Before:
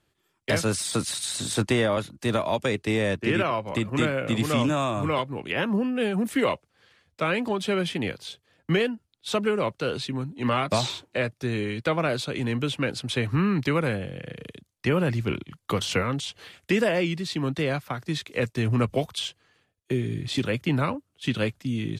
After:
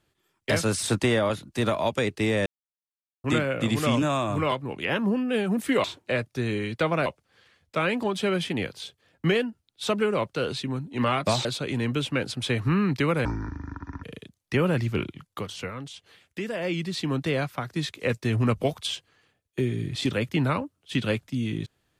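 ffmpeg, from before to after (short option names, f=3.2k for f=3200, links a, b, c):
-filter_complex "[0:a]asplit=11[a][b][c][d][e][f][g][h][i][j][k];[a]atrim=end=0.832[l];[b]atrim=start=1.498:end=3.13,asetpts=PTS-STARTPTS,afade=t=out:st=1.628:d=0.004:c=hsin[m];[c]atrim=start=3.13:end=3.91,asetpts=PTS-STARTPTS,volume=0[n];[d]atrim=start=3.91:end=6.512,asetpts=PTS-STARTPTS,afade=t=in:d=0.004:c=hsin[o];[e]atrim=start=10.898:end=12.122[p];[f]atrim=start=6.508:end=10.902[q];[g]atrim=start=12.118:end=13.924[r];[h]atrim=start=13.92:end=14.36,asetpts=PTS-STARTPTS,asetrate=24696,aresample=44100[s];[i]atrim=start=14.356:end=15.79,asetpts=PTS-STARTPTS,afade=t=out:st=1.104:d=0.33:silence=0.334965[t];[j]atrim=start=15.79:end=16.85,asetpts=PTS-STARTPTS,volume=-9.5dB[u];[k]atrim=start=16.85,asetpts=PTS-STARTPTS,afade=t=in:d=0.33:silence=0.334965[v];[m][n][o]concat=n=3:v=0:a=1[w];[l][w]acrossfade=d=0.004:c1=hsin:c2=hsin[x];[x][p]acrossfade=d=0.004:c1=hsin:c2=hsin[y];[y][q]acrossfade=d=0.004:c1=hsin:c2=hsin[z];[z][r]acrossfade=d=0.004:c1=hsin:c2=hsin[aa];[aa][s]acrossfade=d=0.004:c1=hsin:c2=hsin[ab];[t][u][v]concat=n=3:v=0:a=1[ac];[ab][ac]acrossfade=d=0.004:c1=hsin:c2=hsin"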